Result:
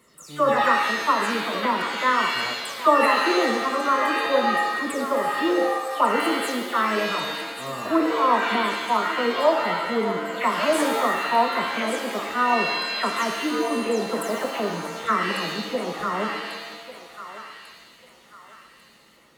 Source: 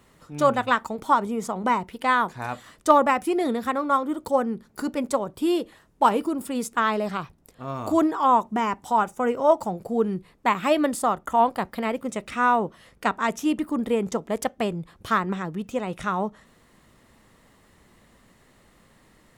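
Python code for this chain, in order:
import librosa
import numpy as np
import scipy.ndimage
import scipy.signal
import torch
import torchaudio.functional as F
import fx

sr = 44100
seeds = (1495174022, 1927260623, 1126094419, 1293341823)

p1 = fx.spec_delay(x, sr, highs='early', ms=210)
p2 = fx.low_shelf(p1, sr, hz=180.0, db=-7.5)
p3 = fx.notch_comb(p2, sr, f0_hz=810.0)
p4 = p3 + fx.echo_thinned(p3, sr, ms=1145, feedback_pct=47, hz=950.0, wet_db=-9, dry=0)
y = fx.rev_shimmer(p4, sr, seeds[0], rt60_s=1.1, semitones=7, shimmer_db=-2, drr_db=3.5)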